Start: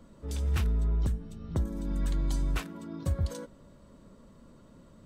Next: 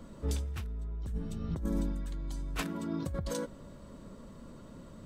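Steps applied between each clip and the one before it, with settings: negative-ratio compressor -34 dBFS, ratio -1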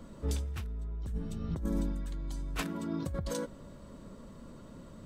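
nothing audible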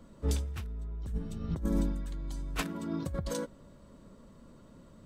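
upward expander 1.5:1, over -46 dBFS; gain +3.5 dB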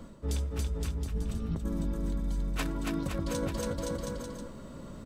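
bouncing-ball echo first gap 0.28 s, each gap 0.85×, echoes 5; reverse; compressor 5:1, threshold -38 dBFS, peak gain reduction 14 dB; reverse; gain +8.5 dB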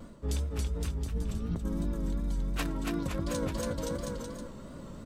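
vibrato 2.8 Hz 65 cents

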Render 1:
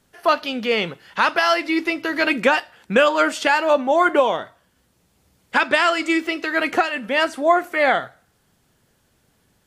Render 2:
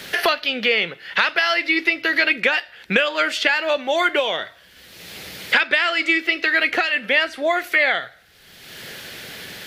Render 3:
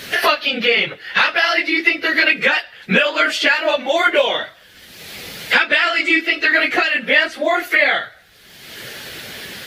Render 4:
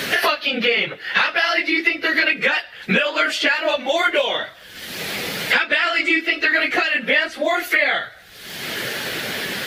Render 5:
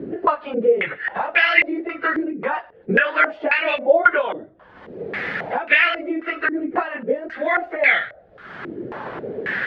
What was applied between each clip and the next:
ten-band EQ 125 Hz -6 dB, 250 Hz -8 dB, 1000 Hz -9 dB, 2000 Hz +7 dB, 4000 Hz +6 dB, 8000 Hz -8 dB; three-band squash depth 100%; gain -1 dB
phase scrambler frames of 50 ms; gain +3.5 dB
three-band squash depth 70%; gain -3 dB
stepped low-pass 3.7 Hz 340–2300 Hz; gain -3.5 dB

